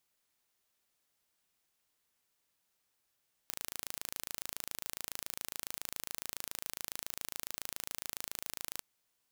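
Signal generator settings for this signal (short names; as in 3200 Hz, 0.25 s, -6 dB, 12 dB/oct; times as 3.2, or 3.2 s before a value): pulse train 27.2/s, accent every 0, -11.5 dBFS 5.30 s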